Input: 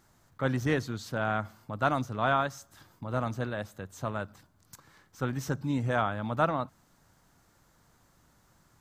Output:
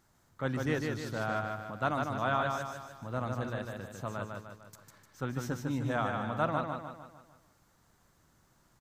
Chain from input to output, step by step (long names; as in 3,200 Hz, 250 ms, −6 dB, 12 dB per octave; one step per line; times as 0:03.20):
repeating echo 151 ms, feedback 48%, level −4 dB
level −4.5 dB